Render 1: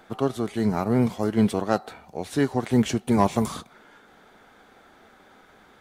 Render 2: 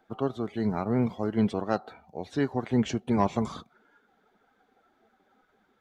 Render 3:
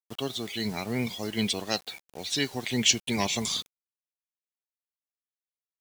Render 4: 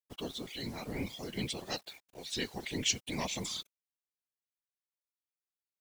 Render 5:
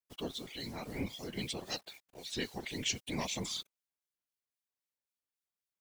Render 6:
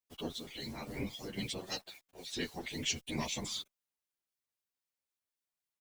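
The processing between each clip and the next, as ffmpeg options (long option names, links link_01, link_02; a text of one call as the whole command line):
ffmpeg -i in.wav -filter_complex "[0:a]acrossover=split=8600[link_01][link_02];[link_02]acompressor=threshold=-56dB:ratio=4:attack=1:release=60[link_03];[link_01][link_03]amix=inputs=2:normalize=0,afftdn=noise_reduction=13:noise_floor=-44,equalizer=frequency=9000:width=3.7:gain=-8.5,volume=-4.5dB" out.wav
ffmpeg -i in.wav -af "aexciter=amount=7.4:drive=8.8:freq=2100,acrusher=bits=6:mix=0:aa=0.000001,volume=-4.5dB" out.wav
ffmpeg -i in.wav -af "afftfilt=real='hypot(re,im)*cos(2*PI*random(0))':imag='hypot(re,im)*sin(2*PI*random(1))':win_size=512:overlap=0.75,volume=-2.5dB" out.wav
ffmpeg -i in.wav -filter_complex "[0:a]acrossover=split=2200[link_01][link_02];[link_01]aeval=exprs='val(0)*(1-0.5/2+0.5/2*cos(2*PI*3.8*n/s))':channel_layout=same[link_03];[link_02]aeval=exprs='val(0)*(1-0.5/2-0.5/2*cos(2*PI*3.8*n/s))':channel_layout=same[link_04];[link_03][link_04]amix=inputs=2:normalize=0,volume=1dB" out.wav
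ffmpeg -i in.wav -filter_complex "[0:a]asplit=2[link_01][link_02];[link_02]adelay=9.2,afreqshift=-0.38[link_03];[link_01][link_03]amix=inputs=2:normalize=1,volume=2.5dB" out.wav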